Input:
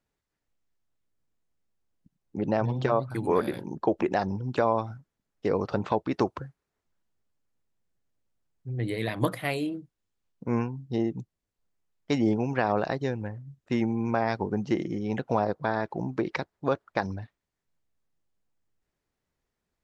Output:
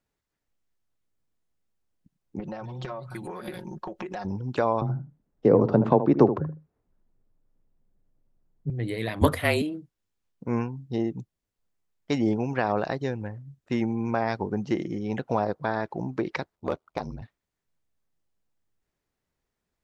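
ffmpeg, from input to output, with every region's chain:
ffmpeg -i in.wav -filter_complex "[0:a]asettb=1/sr,asplit=3[link_01][link_02][link_03];[link_01]atrim=end=2.394[link_04];[link_02]atrim=start=2.39:end=4.25,asetpts=PTS-STARTPTS,afade=type=in:duration=0.004:curve=qsin,afade=type=out:start_time=1.856:duration=0.004:curve=qsin,acompressor=threshold=-29dB:ratio=12:attack=3.2:release=140:knee=1:detection=peak,equalizer=frequency=280:width_type=o:width=2.4:gain=-5,aecho=1:1:5.5:0.74,atrim=end_sample=82026[link_05];[link_03]atrim=start=4.246[link_06];[link_04][link_05]acrossfade=duration=0.004:curve1=hsin:curve2=qsin[link_07];[link_07][link_06]acrossfade=duration=0.004:curve1=qsin:curve2=hsin,asettb=1/sr,asplit=3[link_08][link_09][link_10];[link_08]atrim=end=4.814[link_11];[link_09]atrim=start=4.81:end=8.7,asetpts=PTS-STARTPTS,afade=type=in:duration=0.004:curve=qsin,afade=type=out:start_time=3.886:duration=0.004:curve=qsin,tiltshelf=frequency=1300:gain=10,afreqshift=17,asplit=2[link_12][link_13];[link_13]adelay=77,lowpass=frequency=890:poles=1,volume=-9.5dB,asplit=2[link_14][link_15];[link_15]adelay=77,lowpass=frequency=890:poles=1,volume=0.17[link_16];[link_12][link_14][link_16]amix=inputs=3:normalize=0,atrim=end_sample=171549[link_17];[link_10]atrim=start=8.696[link_18];[link_11][link_17]acrossfade=duration=0.004:curve1=hsin:curve2=qsin[link_19];[link_19][link_18]acrossfade=duration=0.004:curve1=qsin:curve2=hsin,asettb=1/sr,asplit=3[link_20][link_21][link_22];[link_20]atrim=end=9.214[link_23];[link_21]atrim=start=9.21:end=9.62,asetpts=PTS-STARTPTS,afade=type=in:duration=0.004:curve=qsin,afade=type=out:start_time=0.406:duration=0.004:curve=qsin,afreqshift=-34,acontrast=56[link_24];[link_22]atrim=start=9.616[link_25];[link_23][link_24]acrossfade=duration=0.004:curve1=hsin:curve2=qsin[link_26];[link_26][link_25]acrossfade=duration=0.004:curve1=qsin:curve2=hsin,asettb=1/sr,asplit=3[link_27][link_28][link_29];[link_27]atrim=end=16.554[link_30];[link_28]atrim=start=16.55:end=17.22,asetpts=PTS-STARTPTS,afade=type=in:duration=0.004:curve=qsin,afade=type=out:start_time=0.666:duration=0.004:curve=qsin,equalizer=frequency=1700:width_type=o:width=0.3:gain=-13,aeval=exprs='val(0)*sin(2*PI*40*n/s)':channel_layout=same,asoftclip=type=hard:threshold=-16dB[link_31];[link_29]atrim=start=17.216[link_32];[link_30][link_31]acrossfade=duration=0.004:curve1=hsin:curve2=qsin[link_33];[link_33][link_32]acrossfade=duration=0.004:curve1=qsin:curve2=hsin" out.wav

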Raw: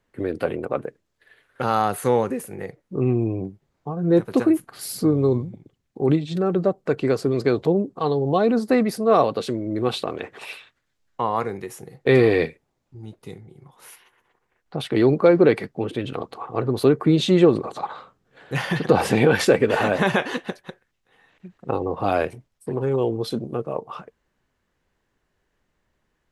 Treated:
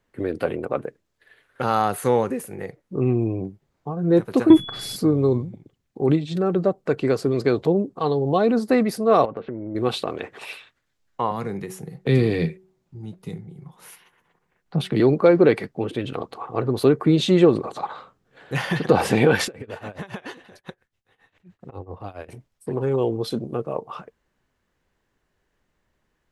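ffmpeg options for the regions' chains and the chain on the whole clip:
ffmpeg -i in.wav -filter_complex "[0:a]asettb=1/sr,asplit=3[link_01][link_02][link_03];[link_01]atrim=end=4.504[link_04];[link_02]atrim=start=4.5:end=4.96,asetpts=PTS-STARTPTS,afade=type=in:duration=0.004:curve=qsin,afade=type=out:start_time=0.456:duration=0.004:curve=qsin,aemphasis=mode=reproduction:type=bsi,acontrast=75,aeval=exprs='val(0)+0.0224*sin(2*PI*3400*n/s)':channel_layout=same[link_05];[link_03]atrim=start=4.956[link_06];[link_04][link_05]acrossfade=duration=0.004:curve1=hsin:curve2=qsin[link_07];[link_07][link_06]acrossfade=duration=0.004:curve1=qsin:curve2=hsin,asettb=1/sr,asplit=3[link_08][link_09][link_10];[link_08]atrim=end=9.254[link_11];[link_09]atrim=start=9.25:end=9.75,asetpts=PTS-STARTPTS,afade=type=in:duration=0.004:curve=qsin,afade=type=out:start_time=0.496:duration=0.004:curve=qsin,lowpass=frequency=2000:width=0.5412,lowpass=frequency=2000:width=1.3066,acompressor=threshold=-27dB:ratio=4:attack=3.2:release=140:knee=1:detection=peak[link_12];[link_10]atrim=start=9.746[link_13];[link_11][link_12]acrossfade=duration=0.004:curve1=hsin:curve2=qsin[link_14];[link_14][link_13]acrossfade=duration=0.004:curve1=qsin:curve2=hsin,asettb=1/sr,asplit=3[link_15][link_16][link_17];[link_15]atrim=end=11.314[link_18];[link_16]atrim=start=11.31:end=15,asetpts=PTS-STARTPTS,afade=type=in:duration=0.004:curve=qsin,afade=type=out:start_time=3.686:duration=0.004:curve=qsin,equalizer=frequency=170:width_type=o:width=0.5:gain=12.5,bandreject=frequency=187.9:width_type=h:width=4,bandreject=frequency=375.8:width_type=h:width=4,acrossover=split=310|3000[link_19][link_20][link_21];[link_20]acompressor=threshold=-29dB:ratio=3:attack=3.2:release=140:knee=2.83:detection=peak[link_22];[link_19][link_22][link_21]amix=inputs=3:normalize=0[link_23];[link_17]atrim=start=14.996[link_24];[link_18][link_23]acrossfade=duration=0.004:curve1=hsin:curve2=qsin[link_25];[link_25][link_24]acrossfade=duration=0.004:curve1=qsin:curve2=hsin,asettb=1/sr,asplit=3[link_26][link_27][link_28];[link_26]atrim=end=19.464[link_29];[link_27]atrim=start=19.46:end=22.29,asetpts=PTS-STARTPTS,afade=type=in:duration=0.004:curve=qsin,afade=type=out:start_time=2.826:duration=0.004:curve=qsin,equalizer=frequency=95:width=3.1:gain=10.5,acompressor=threshold=-27dB:ratio=12:attack=3.2:release=140:knee=1:detection=peak,tremolo=f=7.3:d=0.87[link_30];[link_28]atrim=start=22.286[link_31];[link_29][link_30]acrossfade=duration=0.004:curve1=hsin:curve2=qsin[link_32];[link_32][link_31]acrossfade=duration=0.004:curve1=qsin:curve2=hsin" out.wav

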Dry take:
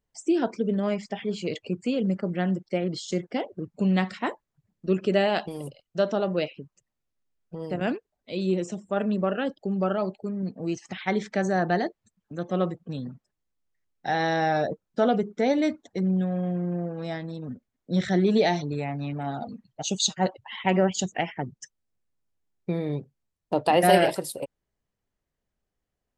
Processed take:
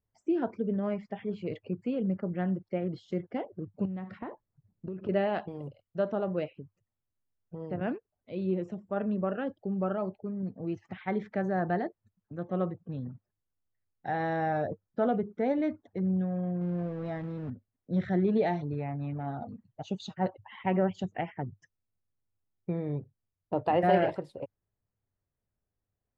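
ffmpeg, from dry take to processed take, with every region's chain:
ffmpeg -i in.wav -filter_complex "[0:a]asettb=1/sr,asplit=3[link_01][link_02][link_03];[link_01]atrim=end=3.854[link_04];[link_02]atrim=start=3.85:end=5.09,asetpts=PTS-STARTPTS,afade=type=in:duration=0.004:curve=qsin,afade=type=out:start_time=1.236:duration=0.004:curve=qsin,tiltshelf=frequency=1200:gain=4,acompressor=threshold=-28dB:ratio=16:attack=3.2:release=140:knee=1:detection=peak[link_05];[link_03]atrim=start=5.086[link_06];[link_04][link_05]acrossfade=duration=0.004:curve1=hsin:curve2=qsin[link_07];[link_07][link_06]acrossfade=duration=0.004:curve1=qsin:curve2=hsin,asettb=1/sr,asplit=3[link_08][link_09][link_10];[link_08]atrim=end=16.614[link_11];[link_09]atrim=start=16.61:end=17.5,asetpts=PTS-STARTPTS,afade=type=in:duration=0.004:curve=qsin,afade=type=out:start_time=0.886:duration=0.004:curve=qsin,aeval=exprs='val(0)+0.5*0.0158*sgn(val(0))':channel_layout=same,highshelf=frequency=10000:gain=-2.5[link_12];[link_10]atrim=start=17.496[link_13];[link_11][link_12]acrossfade=duration=0.004:curve1=hsin:curve2=qsin[link_14];[link_14][link_13]acrossfade=duration=0.004:curve1=qsin:curve2=hsin,lowpass=1800,equalizer=frequency=100:width_type=o:width=0.56:gain=12.5,volume=-5.5dB" out.wav

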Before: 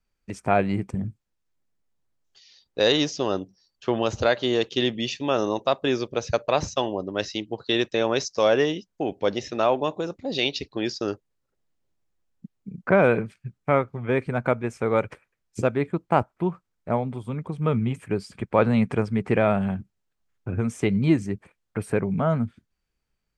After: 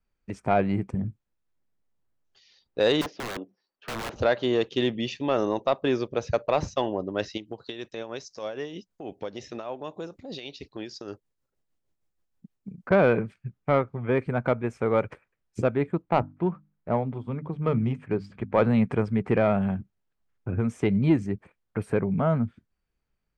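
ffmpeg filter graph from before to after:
ffmpeg -i in.wav -filter_complex "[0:a]asettb=1/sr,asplit=3[link_01][link_02][link_03];[link_01]atrim=end=3.014[link_04];[link_02]atrim=start=3.01:end=4.16,asetpts=PTS-STARTPTS,afade=type=in:duration=0.004:curve=qsin,afade=type=out:start_time=1.146:duration=0.004:curve=qsin,acrossover=split=230 3700:gain=0.0631 1 0.0891[link_05][link_06][link_07];[link_05][link_06][link_07]amix=inputs=3:normalize=0,aeval=exprs='(mod(16.8*val(0)+1,2)-1)/16.8':channel_layout=same[link_08];[link_03]atrim=start=4.156[link_09];[link_04][link_08]acrossfade=duration=0.004:curve1=hsin:curve2=qsin[link_10];[link_10][link_09]acrossfade=duration=0.004:curve1=qsin:curve2=hsin,asettb=1/sr,asplit=3[link_11][link_12][link_13];[link_11]atrim=end=7.374[link_14];[link_12]atrim=start=7.37:end=12.91,asetpts=PTS-STARTPTS,afade=type=in:duration=0.004:curve=qsin,afade=type=out:start_time=5.536:duration=0.004:curve=qsin,highshelf=frequency=4800:gain=11.5,acompressor=threshold=-31dB:ratio=3:attack=3.2:release=140:knee=1:detection=peak,tremolo=f=6.4:d=0.53[link_15];[link_13]atrim=start=12.906[link_16];[link_14][link_15]acrossfade=duration=0.004:curve1=hsin:curve2=qsin[link_17];[link_17][link_16]acrossfade=duration=0.004:curve1=qsin:curve2=hsin,asettb=1/sr,asplit=3[link_18][link_19][link_20];[link_18]atrim=end=16.024[link_21];[link_19]atrim=start=16.02:end=18.62,asetpts=PTS-STARTPTS,afade=type=in:duration=0.004:curve=qsin,afade=type=out:start_time=2.596:duration=0.004:curve=qsin,bandreject=frequency=50:width_type=h:width=6,bandreject=frequency=100:width_type=h:width=6,bandreject=frequency=150:width_type=h:width=6,bandreject=frequency=200:width_type=h:width=6,bandreject=frequency=250:width_type=h:width=6,bandreject=frequency=300:width_type=h:width=6,adynamicsmooth=sensitivity=7:basefreq=4000[link_22];[link_20]atrim=start=18.616[link_23];[link_21][link_22]acrossfade=duration=0.004:curve1=hsin:curve2=qsin[link_24];[link_24][link_23]acrossfade=duration=0.004:curve1=qsin:curve2=hsin,highshelf=frequency=3900:gain=-11.5,acontrast=88,volume=-7.5dB" out.wav

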